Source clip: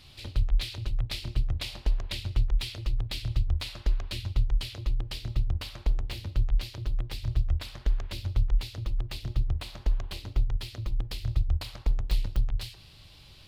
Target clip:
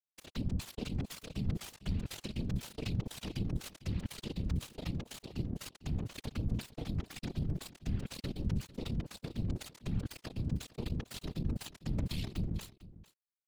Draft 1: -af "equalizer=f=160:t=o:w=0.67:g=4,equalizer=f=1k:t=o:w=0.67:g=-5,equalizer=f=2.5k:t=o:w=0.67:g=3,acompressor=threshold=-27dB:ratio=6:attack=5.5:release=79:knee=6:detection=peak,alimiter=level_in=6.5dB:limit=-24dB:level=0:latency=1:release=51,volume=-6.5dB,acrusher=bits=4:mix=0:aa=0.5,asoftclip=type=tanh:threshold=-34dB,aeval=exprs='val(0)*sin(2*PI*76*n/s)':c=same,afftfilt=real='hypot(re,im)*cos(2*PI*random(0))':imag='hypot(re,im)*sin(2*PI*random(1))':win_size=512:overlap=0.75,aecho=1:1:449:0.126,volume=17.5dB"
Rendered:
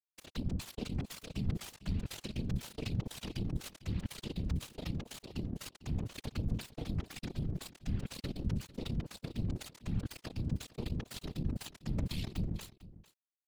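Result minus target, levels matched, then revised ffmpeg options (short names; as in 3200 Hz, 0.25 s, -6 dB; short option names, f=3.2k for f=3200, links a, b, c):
compressor: peak gain reduction +10 dB
-af "equalizer=f=160:t=o:w=0.67:g=4,equalizer=f=1k:t=o:w=0.67:g=-5,equalizer=f=2.5k:t=o:w=0.67:g=3,alimiter=level_in=6.5dB:limit=-24dB:level=0:latency=1:release=51,volume=-6.5dB,acrusher=bits=4:mix=0:aa=0.5,asoftclip=type=tanh:threshold=-34dB,aeval=exprs='val(0)*sin(2*PI*76*n/s)':c=same,afftfilt=real='hypot(re,im)*cos(2*PI*random(0))':imag='hypot(re,im)*sin(2*PI*random(1))':win_size=512:overlap=0.75,aecho=1:1:449:0.126,volume=17.5dB"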